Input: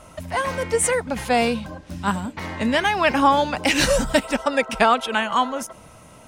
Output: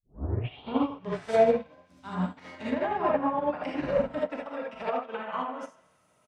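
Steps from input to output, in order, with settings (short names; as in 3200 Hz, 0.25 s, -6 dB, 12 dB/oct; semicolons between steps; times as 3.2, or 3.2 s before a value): tape start at the beginning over 1.45 s; treble ducked by the level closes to 820 Hz, closed at -16 dBFS; HPF 170 Hz 6 dB/oct; limiter -17.5 dBFS, peak gain reduction 9 dB; doubler 43 ms -12 dB; on a send: narrowing echo 0.157 s, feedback 59%, band-pass 2100 Hz, level -9 dB; on the sum: non-linear reverb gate 0.1 s rising, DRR -2.5 dB; upward expander 2.5:1, over -32 dBFS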